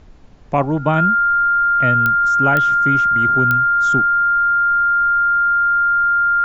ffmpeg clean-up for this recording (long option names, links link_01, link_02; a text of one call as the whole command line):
ffmpeg -i in.wav -af "adeclick=threshold=4,bandreject=frequency=1400:width=30,agate=range=-21dB:threshold=-14dB" out.wav